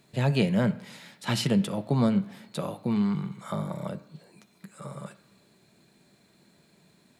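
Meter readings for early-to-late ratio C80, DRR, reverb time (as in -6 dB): 18.5 dB, 8.5 dB, 1.1 s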